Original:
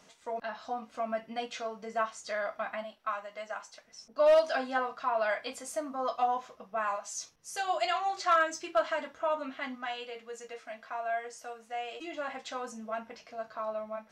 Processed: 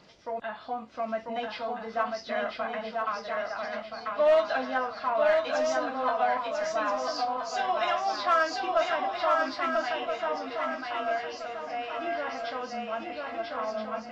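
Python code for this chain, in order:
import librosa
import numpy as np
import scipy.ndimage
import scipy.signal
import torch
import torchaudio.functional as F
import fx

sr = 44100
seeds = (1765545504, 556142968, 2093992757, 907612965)

p1 = fx.freq_compress(x, sr, knee_hz=2800.0, ratio=1.5)
p2 = 10.0 ** (-29.0 / 20.0) * np.tanh(p1 / 10.0 ** (-29.0 / 20.0))
p3 = p1 + (p2 * 10.0 ** (-10.0 / 20.0))
p4 = fx.dmg_noise_band(p3, sr, seeds[0], low_hz=45.0, high_hz=670.0, level_db=-64.0)
y = fx.echo_swing(p4, sr, ms=1324, ratio=3, feedback_pct=39, wet_db=-3.0)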